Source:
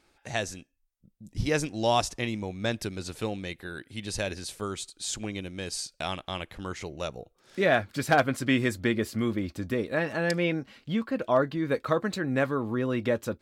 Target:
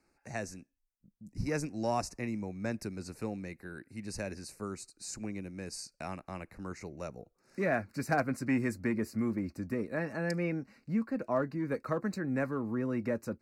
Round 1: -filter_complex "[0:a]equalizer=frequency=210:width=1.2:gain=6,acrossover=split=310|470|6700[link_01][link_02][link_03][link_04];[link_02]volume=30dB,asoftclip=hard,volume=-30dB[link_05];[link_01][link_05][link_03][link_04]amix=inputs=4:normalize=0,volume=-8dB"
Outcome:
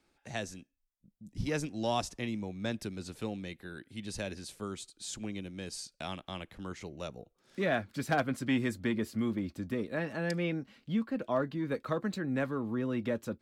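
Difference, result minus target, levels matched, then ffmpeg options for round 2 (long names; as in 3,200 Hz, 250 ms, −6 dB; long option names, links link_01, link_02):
4,000 Hz band +7.0 dB
-filter_complex "[0:a]asuperstop=centerf=3300:order=4:qfactor=1.8,equalizer=frequency=210:width=1.2:gain=6,acrossover=split=310|470|6700[link_01][link_02][link_03][link_04];[link_02]volume=30dB,asoftclip=hard,volume=-30dB[link_05];[link_01][link_05][link_03][link_04]amix=inputs=4:normalize=0,volume=-8dB"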